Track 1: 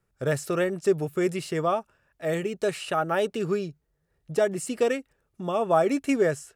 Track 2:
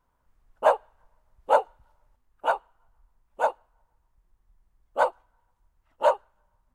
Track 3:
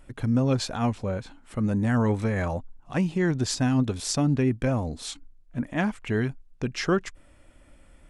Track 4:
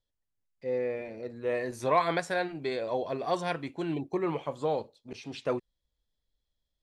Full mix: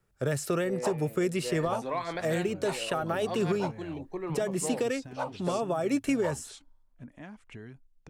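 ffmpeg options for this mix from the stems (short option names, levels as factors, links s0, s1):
-filter_complex "[0:a]alimiter=limit=0.112:level=0:latency=1:release=126,volume=1.19[s0];[1:a]adelay=200,volume=0.299[s1];[2:a]acompressor=threshold=0.0282:ratio=6,adelay=1450,volume=0.266[s2];[3:a]volume=0.501[s3];[s0][s1][s2][s3]amix=inputs=4:normalize=0,acrossover=split=270|3000[s4][s5][s6];[s5]acompressor=threshold=0.0447:ratio=6[s7];[s4][s7][s6]amix=inputs=3:normalize=0"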